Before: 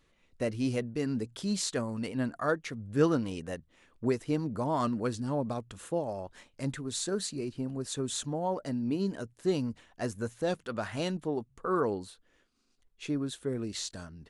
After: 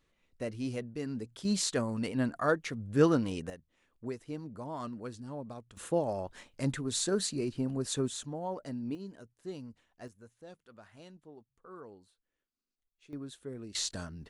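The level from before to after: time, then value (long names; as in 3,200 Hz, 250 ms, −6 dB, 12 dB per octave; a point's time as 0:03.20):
−5.5 dB
from 0:01.45 +1 dB
from 0:03.50 −10 dB
from 0:05.77 +2 dB
from 0:08.08 −5.5 dB
from 0:08.95 −13 dB
from 0:10.08 −20 dB
from 0:13.13 −9 dB
from 0:13.75 +3 dB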